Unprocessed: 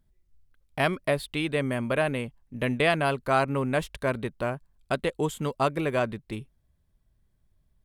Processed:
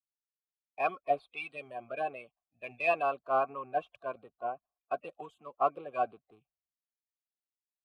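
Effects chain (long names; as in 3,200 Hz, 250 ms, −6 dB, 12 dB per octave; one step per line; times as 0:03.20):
spectral magnitudes quantised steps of 30 dB
in parallel at −5 dB: soft clipping −24.5 dBFS, distortion −10 dB
on the sum: formant filter a
multiband upward and downward expander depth 100%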